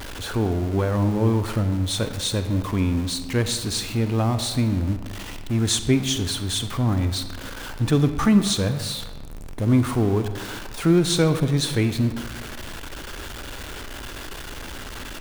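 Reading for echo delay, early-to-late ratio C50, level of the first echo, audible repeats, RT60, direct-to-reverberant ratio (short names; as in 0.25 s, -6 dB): none, 10.0 dB, none, none, 1.5 s, 9.0 dB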